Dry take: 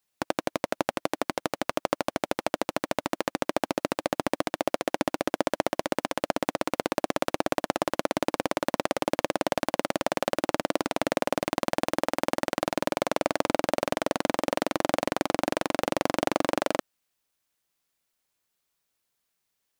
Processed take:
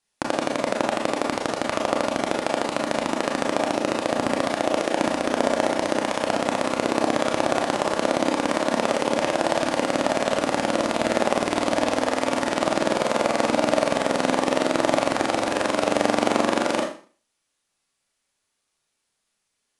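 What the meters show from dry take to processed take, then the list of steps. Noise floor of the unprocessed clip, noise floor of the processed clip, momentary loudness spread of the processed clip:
-80 dBFS, -77 dBFS, 4 LU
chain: steep low-pass 11000 Hz 96 dB/oct; Schroeder reverb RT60 0.41 s, combs from 27 ms, DRR -0.5 dB; gain +2.5 dB

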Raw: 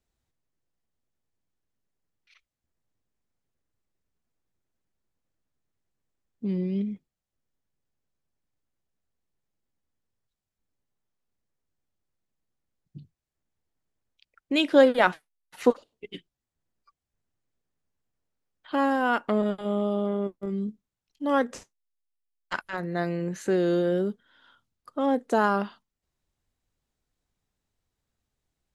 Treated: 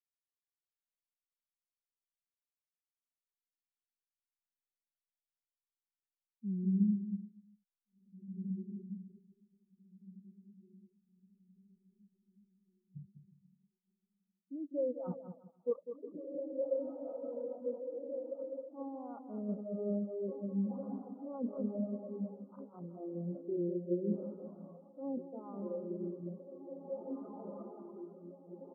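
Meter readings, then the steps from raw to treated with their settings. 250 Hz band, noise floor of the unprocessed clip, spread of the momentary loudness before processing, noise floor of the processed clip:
-8.0 dB, under -85 dBFS, 15 LU, under -85 dBFS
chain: Wiener smoothing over 15 samples; diffused feedback echo 1.927 s, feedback 59%, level -14 dB; transient shaper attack 0 dB, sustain +8 dB; reverse; compressor 16:1, threshold -36 dBFS, peak gain reduction 24 dB; reverse; elliptic low-pass 1300 Hz, stop band 40 dB; on a send: bouncing-ball echo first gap 0.2 s, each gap 0.8×, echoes 5; on the sum: spectral expander 2.5:1; gain +5 dB

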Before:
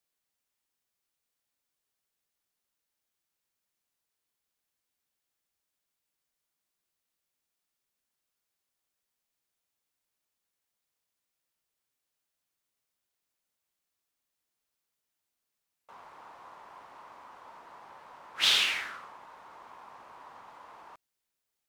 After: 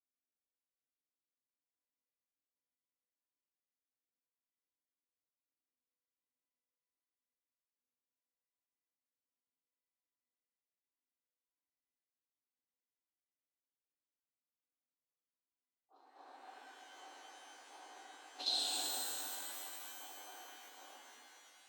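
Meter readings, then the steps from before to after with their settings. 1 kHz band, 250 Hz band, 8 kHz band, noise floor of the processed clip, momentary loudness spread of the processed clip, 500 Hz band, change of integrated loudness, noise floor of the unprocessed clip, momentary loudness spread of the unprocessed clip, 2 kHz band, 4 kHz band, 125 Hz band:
-7.0 dB, -2.0 dB, -1.0 dB, under -85 dBFS, 21 LU, -4.0 dB, -13.5 dB, -85 dBFS, 14 LU, -17.5 dB, -10.5 dB, n/a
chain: RIAA curve playback; expander -38 dBFS; low-pass opened by the level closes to 420 Hz, open at -64.5 dBFS; EQ curve 650 Hz 0 dB, 1800 Hz -24 dB, 3600 Hz +7 dB; compressor 8:1, threshold -49 dBFS, peak gain reduction 25.5 dB; tremolo saw down 1.3 Hz, depth 75%; small resonant body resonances 520/3900 Hz, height 14 dB, ringing for 45 ms; frequency shift +240 Hz; shimmer reverb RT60 2.9 s, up +12 st, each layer -2 dB, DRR -1.5 dB; gain +9.5 dB

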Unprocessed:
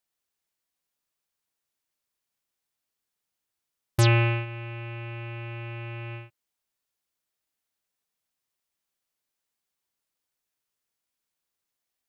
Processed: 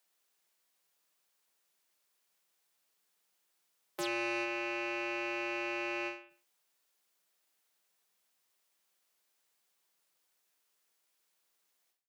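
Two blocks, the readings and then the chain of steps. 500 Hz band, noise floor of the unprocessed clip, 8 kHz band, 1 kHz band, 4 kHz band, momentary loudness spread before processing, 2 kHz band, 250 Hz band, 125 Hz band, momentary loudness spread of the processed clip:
-3.5 dB, -85 dBFS, -9.5 dB, -4.0 dB, -7.0 dB, 16 LU, -2.5 dB, -5.0 dB, -39.0 dB, 6 LU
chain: steep high-pass 160 Hz 96 dB/oct; bell 240 Hz -9.5 dB 0.51 oct; in parallel at -2 dB: negative-ratio compressor -33 dBFS; on the sum: limiter -21 dBFS, peak gain reduction 11 dB; soft clip -26.5 dBFS, distortion -15 dB; on a send: feedback echo 72 ms, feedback 34%, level -23.5 dB; on the sum: ending taper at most 120 dB/s

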